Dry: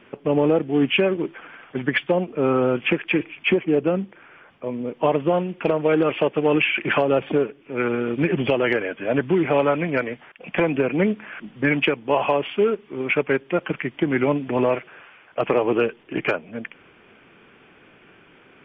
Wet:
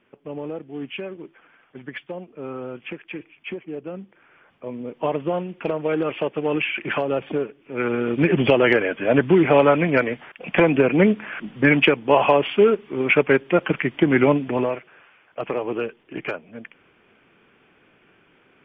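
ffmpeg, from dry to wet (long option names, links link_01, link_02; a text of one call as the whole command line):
ffmpeg -i in.wav -af "volume=4dB,afade=type=in:start_time=3.86:duration=0.86:silence=0.354813,afade=type=in:start_time=7.57:duration=0.9:silence=0.398107,afade=type=out:start_time=14.26:duration=0.49:silence=0.316228" out.wav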